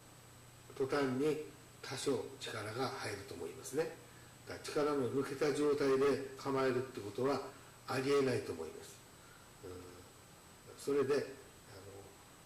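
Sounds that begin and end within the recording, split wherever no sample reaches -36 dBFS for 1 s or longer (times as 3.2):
10.87–11.22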